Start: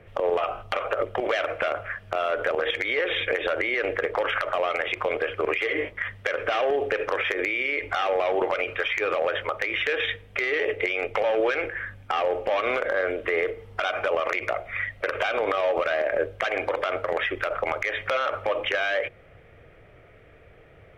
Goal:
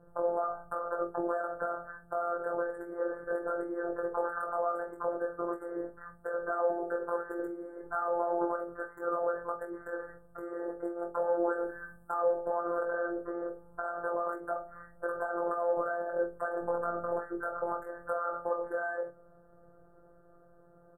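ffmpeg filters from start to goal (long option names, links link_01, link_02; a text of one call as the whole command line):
ffmpeg -i in.wav -filter_complex "[0:a]asettb=1/sr,asplit=3[link_01][link_02][link_03];[link_01]atrim=end=11.524[link_04];[link_02]atrim=start=11.52:end=12.15,asetpts=PTS-STARTPTS,afade=type=in:duration=0.004:curve=qsin,afade=type=out:start_time=0.626:duration=0.004:curve=qsin,highshelf=frequency=5400:gain=9[link_05];[link_03]atrim=start=12.146[link_06];[link_04][link_05]acrossfade=duration=0.004:curve1=hsin:curve2=qsin[link_07];[link_07][link_06]acrossfade=duration=0.004:curve1=qsin:curve2=hsin,asettb=1/sr,asplit=3[link_08][link_09][link_10];[link_08]atrim=end=12.854[link_11];[link_09]atrim=start=12.85:end=13.84,asetpts=PTS-STARTPTS,afade=type=in:duration=0.004:curve=qsin,afade=type=out:start_time=0.986:duration=0.004:curve=qsin,acrossover=split=3300[link_12][link_13];[link_13]acompressor=threshold=-51dB:ratio=4:attack=1:release=60[link_14];[link_12][link_14]amix=inputs=2:normalize=0[link_15];[link_10]atrim=start=13.836[link_16];[link_11][link_15]acrossfade=duration=0.004:curve1=hsin:curve2=qsin[link_17];[link_17][link_16]acrossfade=duration=0.004:curve1=qsin:curve2=hsin,asettb=1/sr,asplit=3[link_18][link_19][link_20];[link_18]atrim=end=16.614[link_21];[link_19]atrim=start=16.61:end=17.18,asetpts=PTS-STARTPTS,afade=type=in:duration=0.004:curve=qsin,afade=type=out:start_time=0.566:duration=0.004:curve=qsin,aeval=exprs='val(0)+0.0141*(sin(2*PI*60*n/s)+sin(2*PI*2*60*n/s)/2+sin(2*PI*3*60*n/s)/3+sin(2*PI*4*60*n/s)/4+sin(2*PI*5*60*n/s)/5)':channel_layout=same[link_22];[link_20]atrim=start=17.176[link_23];[link_21][link_22]acrossfade=duration=0.004:curve1=hsin:curve2=qsin[link_24];[link_24][link_23]acrossfade=duration=0.004:curve1=qsin:curve2=hsin,flanger=delay=18.5:depth=3.4:speed=0.14,afftfilt=real='hypot(re,im)*cos(PI*b)':imag='0':win_size=1024:overlap=0.75,asuperstop=centerf=3600:order=20:qfactor=0.57,asplit=2[link_25][link_26];[link_26]adelay=44,volume=-12dB[link_27];[link_25][link_27]amix=inputs=2:normalize=0" out.wav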